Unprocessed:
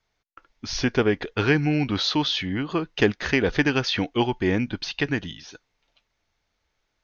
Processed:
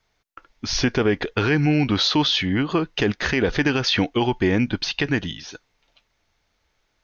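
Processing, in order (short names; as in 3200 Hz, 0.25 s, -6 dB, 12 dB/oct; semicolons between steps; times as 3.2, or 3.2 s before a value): limiter -16 dBFS, peak gain reduction 9 dB; gain +5.5 dB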